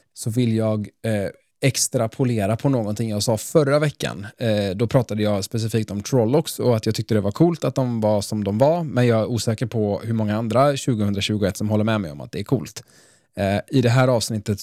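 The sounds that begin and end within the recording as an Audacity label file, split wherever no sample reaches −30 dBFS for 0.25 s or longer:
1.620000	12.790000	sound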